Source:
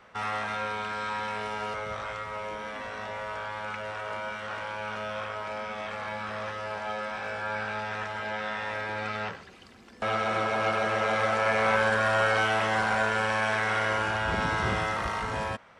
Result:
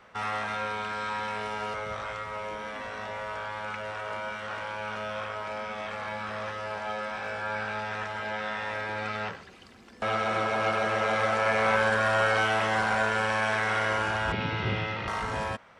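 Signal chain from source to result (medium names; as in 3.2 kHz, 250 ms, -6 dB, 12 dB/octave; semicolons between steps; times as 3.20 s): 14.32–15.08 s: cabinet simulation 100–4400 Hz, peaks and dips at 110 Hz +7 dB, 690 Hz -8 dB, 1.1 kHz -10 dB, 1.6 kHz -6 dB, 2.6 kHz +5 dB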